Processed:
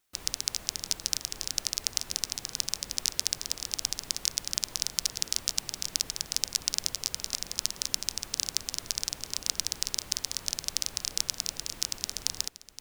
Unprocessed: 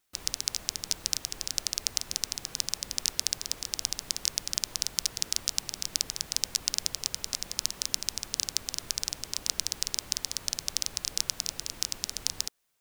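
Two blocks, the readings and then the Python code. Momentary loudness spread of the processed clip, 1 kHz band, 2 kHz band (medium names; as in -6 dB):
4 LU, 0.0 dB, 0.0 dB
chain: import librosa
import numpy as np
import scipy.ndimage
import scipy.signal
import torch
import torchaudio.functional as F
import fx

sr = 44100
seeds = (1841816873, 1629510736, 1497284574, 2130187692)

y = x + 10.0 ** (-15.5 / 20.0) * np.pad(x, (int(520 * sr / 1000.0), 0))[:len(x)]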